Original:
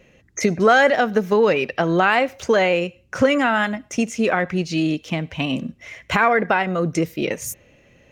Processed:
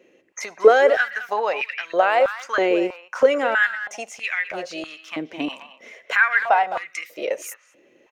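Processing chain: speakerphone echo 0.21 s, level -11 dB; stepped high-pass 3.1 Hz 340–2100 Hz; gain -6 dB

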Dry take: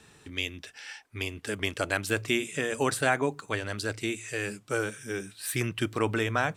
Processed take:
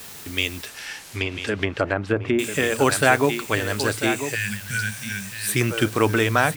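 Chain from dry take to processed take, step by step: on a send: echo 0.994 s -9.5 dB; 4.35–5.48 on the sum: spectral gain 250–1400 Hz -29 dB; requantised 8-bit, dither triangular; 0.67–2.39 treble ducked by the level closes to 950 Hz, closed at -24 dBFS; gain +8 dB

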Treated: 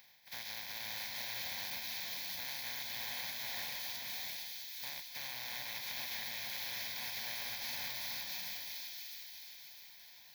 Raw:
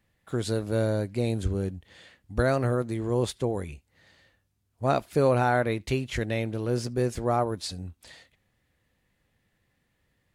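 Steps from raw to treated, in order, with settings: spectral contrast lowered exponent 0.1; reverse; compressor 6:1, threshold -36 dBFS, peak gain reduction 17.5 dB; reverse; HPF 190 Hz 6 dB/oct; bell 8600 Hz -9 dB 0.45 oct; fixed phaser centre 1900 Hz, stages 8; upward compressor, threshold -59 dBFS; bell 2800 Hz +13 dB 0.58 oct; notch 640 Hz, Q 12; thin delay 0.66 s, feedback 44%, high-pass 3100 Hz, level -7 dB; limiter -36 dBFS, peak gain reduction 13 dB; bloom reverb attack 0.64 s, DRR 0.5 dB; gain +3 dB

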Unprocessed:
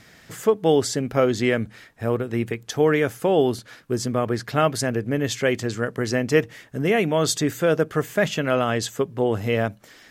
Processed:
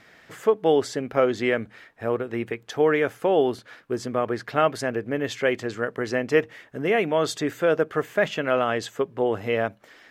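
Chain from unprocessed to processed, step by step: tone controls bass -10 dB, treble -11 dB

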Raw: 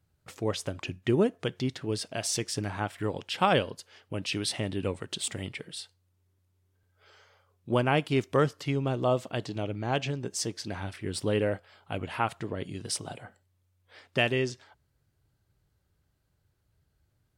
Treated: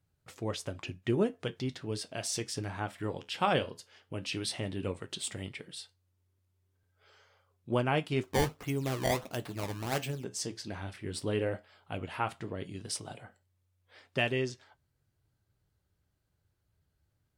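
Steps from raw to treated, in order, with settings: 8.23–10.24 decimation with a swept rate 19×, swing 160% 1.5 Hz; flange 0.14 Hz, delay 7.2 ms, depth 6.3 ms, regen -65%

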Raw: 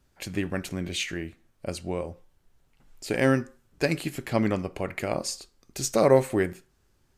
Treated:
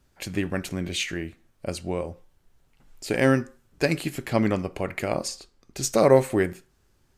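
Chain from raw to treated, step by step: 5.28–5.83 high shelf 6300 Hz -9 dB; gain +2 dB

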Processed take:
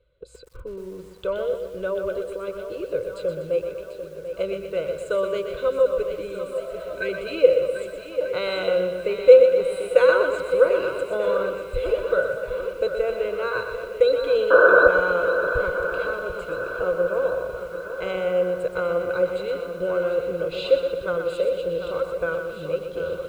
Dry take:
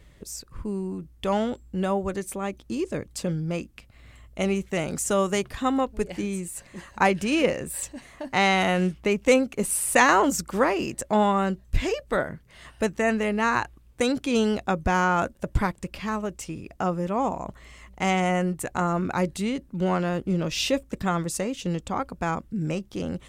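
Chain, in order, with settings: spectral repair 6.59–7.31, 460–1500 Hz after; gate -44 dBFS, range -13 dB; painted sound noise, 14.5–14.88, 240–1800 Hz -13 dBFS; in parallel at -1 dB: compressor 10:1, threshold -33 dBFS, peak gain reduction 23 dB; on the sum: Bessel low-pass 5400 Hz, order 4; fixed phaser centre 1200 Hz, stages 8; small resonant body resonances 510/1500/4000 Hz, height 18 dB, ringing for 40 ms; on a send: swung echo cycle 1.236 s, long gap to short 1.5:1, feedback 49%, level -10.5 dB; on the sum: lo-fi delay 0.122 s, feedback 55%, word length 7-bit, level -7 dB; gain -8 dB

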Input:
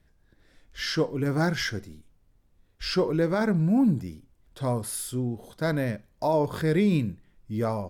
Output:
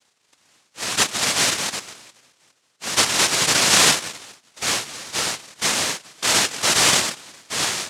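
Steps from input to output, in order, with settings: thinning echo 0.409 s, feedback 25%, high-pass 380 Hz, level -21.5 dB; noise vocoder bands 1; gain +5 dB

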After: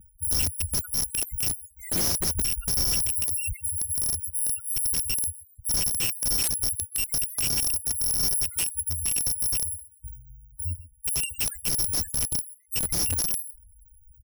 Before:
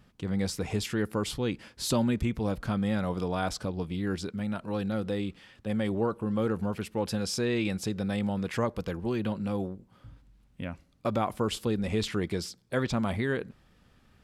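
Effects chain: FFT order left unsorted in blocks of 256 samples; bell 6000 Hz +4 dB 2.7 oct; fixed phaser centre 1800 Hz, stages 4; on a send: echo 0.129 s -17 dB; on the sum: loudest bins only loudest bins 8; resonant low shelf 480 Hz +7 dB, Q 1.5; wrapped overs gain 26 dB; gain +6.5 dB

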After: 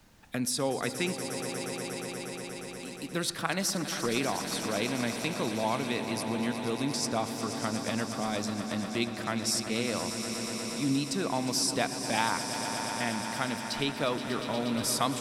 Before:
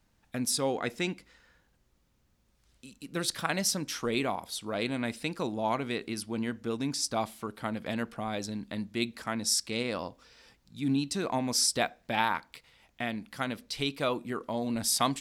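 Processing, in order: swelling echo 0.119 s, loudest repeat 5, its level -14 dB; on a send at -18.5 dB: reverb RT60 0.65 s, pre-delay 72 ms; on the sum: three-band squash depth 40%

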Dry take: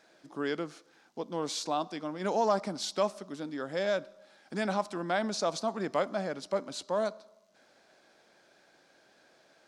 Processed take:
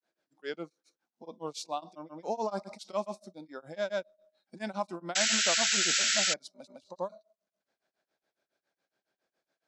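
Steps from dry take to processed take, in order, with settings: spectral noise reduction 16 dB; grains 0.156 s, grains 7.2/s, pitch spread up and down by 0 st; painted sound noise, 5.15–6.34, 1300–7900 Hz -26 dBFS; gain -1.5 dB

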